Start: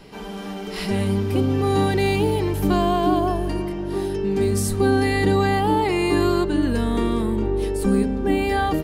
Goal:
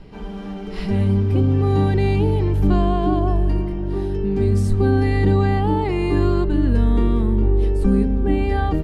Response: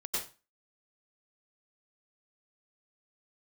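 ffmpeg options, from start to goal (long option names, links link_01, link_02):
-af "aemphasis=mode=reproduction:type=bsi,volume=-3.5dB"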